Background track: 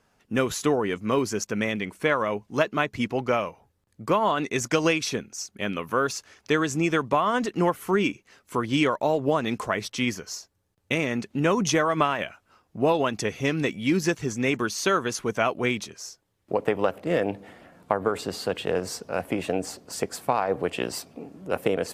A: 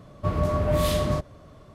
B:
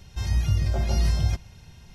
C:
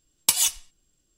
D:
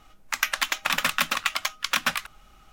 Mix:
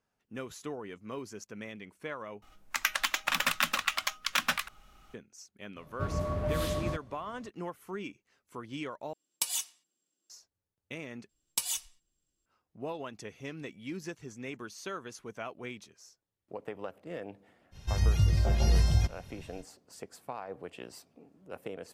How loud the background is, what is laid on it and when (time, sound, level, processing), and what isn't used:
background track -16.5 dB
2.42 s: replace with D -4.5 dB
5.76 s: add A -8.5 dB
9.13 s: replace with C -11.5 dB + high-pass 210 Hz 24 dB/octave
11.29 s: replace with C -11 dB + gain riding
17.71 s: add B -2 dB, fades 0.05 s

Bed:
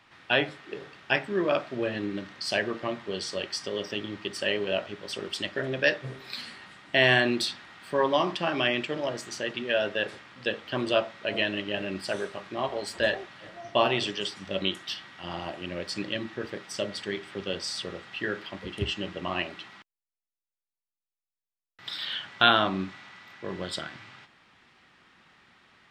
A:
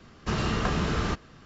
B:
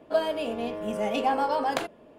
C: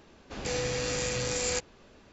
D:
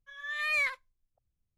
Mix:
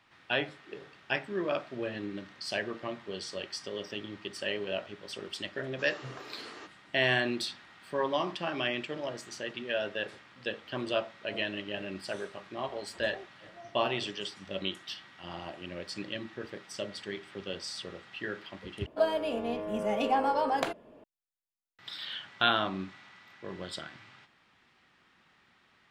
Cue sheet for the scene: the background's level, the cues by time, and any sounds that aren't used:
bed -6 dB
5.52 s: add A -16.5 dB + steep high-pass 270 Hz 72 dB/octave
18.86 s: replace with B -2 dB + treble shelf 6.6 kHz -6 dB
not used: C, D

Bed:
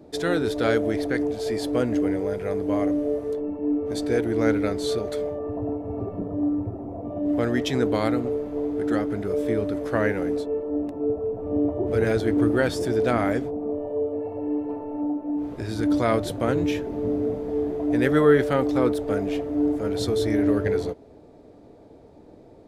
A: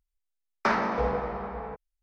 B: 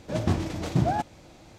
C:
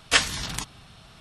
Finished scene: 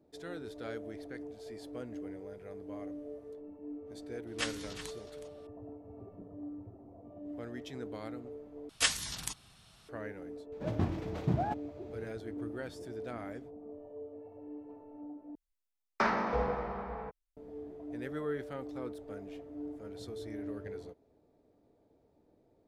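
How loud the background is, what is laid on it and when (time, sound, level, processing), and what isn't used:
bed -19.5 dB
4.27 s: add C -16.5 dB + delay 368 ms -12.5 dB
8.69 s: replace with C -12.5 dB + treble shelf 5 kHz +11 dB
10.52 s: add B -7 dB + peaking EQ 8 kHz -13 dB 2 oct
15.35 s: replace with A -4.5 dB

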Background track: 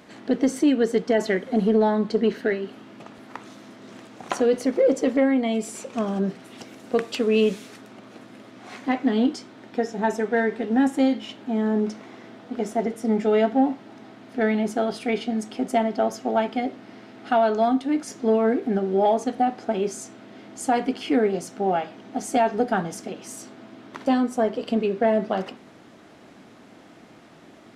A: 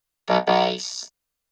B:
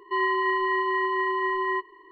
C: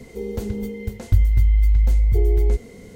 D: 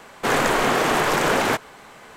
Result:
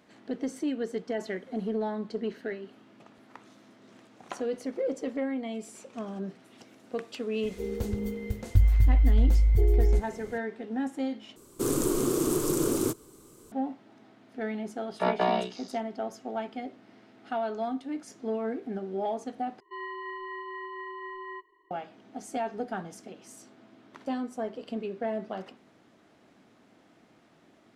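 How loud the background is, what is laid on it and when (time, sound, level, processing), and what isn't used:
background track -11.5 dB
7.43 s: add C -4.5 dB
11.36 s: replace with D -2.5 dB + FFT filter 130 Hz 0 dB, 210 Hz -5 dB, 340 Hz +6 dB, 750 Hz -23 dB, 1.2 kHz -13 dB, 1.8 kHz -27 dB, 8.8 kHz +4 dB
14.72 s: add A -7 dB + low-pass 2.7 kHz
19.60 s: replace with B -14 dB

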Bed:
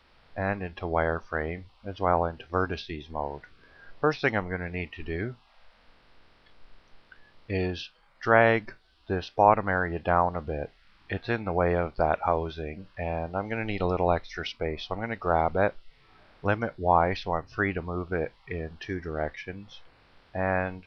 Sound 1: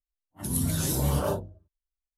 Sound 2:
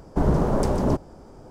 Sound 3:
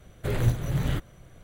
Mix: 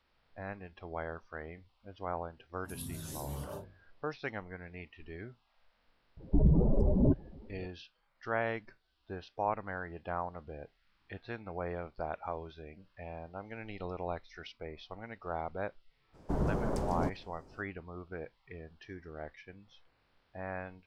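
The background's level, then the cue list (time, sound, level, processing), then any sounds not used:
bed -13.5 dB
2.25 s: add 1 -15.5 dB
6.17 s: add 2 -3.5 dB + spectral contrast enhancement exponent 2.3
16.13 s: add 2 -11.5 dB, fades 0.02 s
not used: 3

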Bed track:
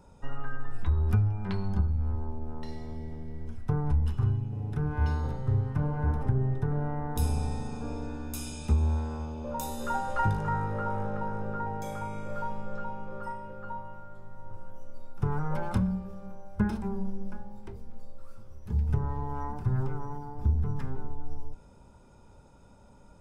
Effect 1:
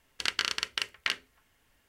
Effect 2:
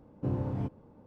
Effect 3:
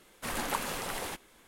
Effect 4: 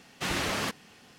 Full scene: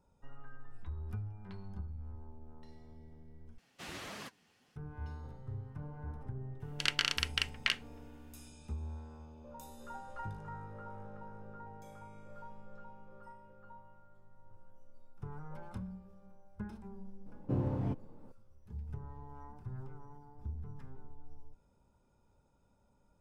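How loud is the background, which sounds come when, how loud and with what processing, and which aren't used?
bed track -16 dB
3.58 s: replace with 4 -11.5 dB + flange 1.7 Hz, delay 4 ms, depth 9.3 ms, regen +40%
6.60 s: add 1 -4 dB + peaking EQ 2.7 kHz +4 dB 0.63 oct
17.26 s: add 2 -1.5 dB
not used: 3

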